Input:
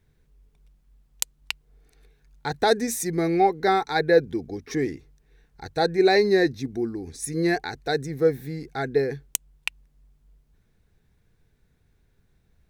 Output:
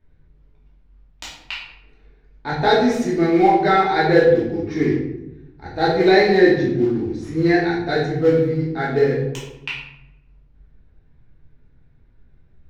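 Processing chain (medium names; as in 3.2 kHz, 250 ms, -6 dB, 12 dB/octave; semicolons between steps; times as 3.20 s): treble shelf 4.1 kHz +7.5 dB; modulation noise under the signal 19 dB; distance through air 230 m; simulated room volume 300 m³, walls mixed, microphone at 2.7 m; tape noise reduction on one side only decoder only; trim -1 dB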